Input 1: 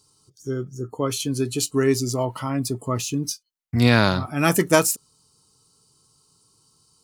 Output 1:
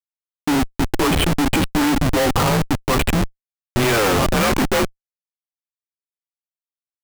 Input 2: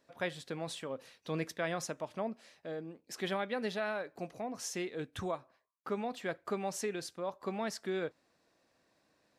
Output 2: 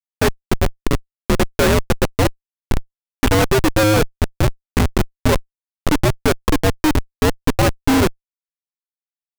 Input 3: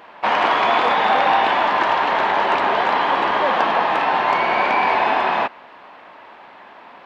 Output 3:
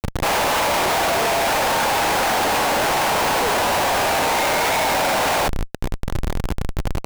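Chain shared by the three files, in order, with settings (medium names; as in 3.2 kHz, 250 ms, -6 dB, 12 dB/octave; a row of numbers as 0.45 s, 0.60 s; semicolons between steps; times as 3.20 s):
mistuned SSB -110 Hz 370–3200 Hz; Schmitt trigger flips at -34.5 dBFS; normalise loudness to -19 LUFS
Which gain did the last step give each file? +12.0 dB, +28.0 dB, 0.0 dB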